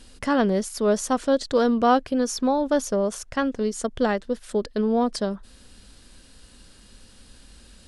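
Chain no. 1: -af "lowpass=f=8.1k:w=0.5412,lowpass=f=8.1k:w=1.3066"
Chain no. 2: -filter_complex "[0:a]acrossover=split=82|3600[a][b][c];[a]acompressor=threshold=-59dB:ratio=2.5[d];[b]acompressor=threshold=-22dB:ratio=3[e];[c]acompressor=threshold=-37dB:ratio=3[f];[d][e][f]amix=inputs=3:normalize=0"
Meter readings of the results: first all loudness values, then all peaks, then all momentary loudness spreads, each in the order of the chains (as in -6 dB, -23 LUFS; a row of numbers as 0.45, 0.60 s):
-23.5, -27.0 LUFS; -8.0, -13.0 dBFS; 7, 4 LU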